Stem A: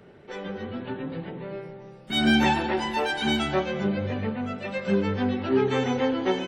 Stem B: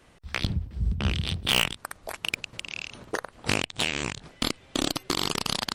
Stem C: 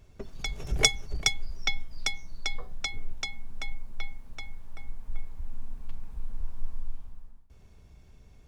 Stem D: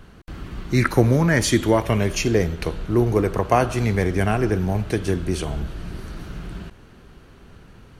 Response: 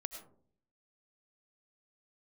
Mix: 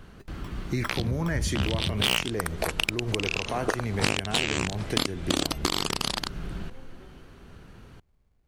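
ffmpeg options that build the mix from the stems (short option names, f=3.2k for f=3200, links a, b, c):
-filter_complex "[0:a]acompressor=threshold=-31dB:ratio=6,adelay=750,volume=-20dB[a];[1:a]highpass=57,dynaudnorm=f=510:g=5:m=11.5dB,adelay=550,volume=2.5dB[b];[2:a]acrusher=samples=20:mix=1:aa=0.000001,volume=-14dB[c];[3:a]alimiter=limit=-13dB:level=0:latency=1:release=149,volume=-2dB[d];[a][b][c][d]amix=inputs=4:normalize=0,acompressor=threshold=-25dB:ratio=3"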